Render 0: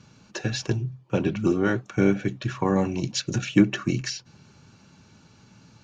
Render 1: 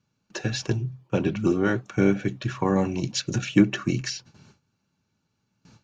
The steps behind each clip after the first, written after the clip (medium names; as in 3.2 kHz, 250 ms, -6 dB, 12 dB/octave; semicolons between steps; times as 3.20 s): gate with hold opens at -42 dBFS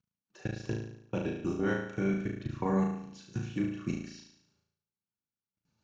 level held to a coarse grid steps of 24 dB; flutter echo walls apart 6.2 m, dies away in 0.71 s; trim -7 dB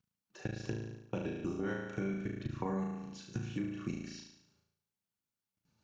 compression 3:1, threshold -37 dBFS, peak gain reduction 10 dB; trim +1.5 dB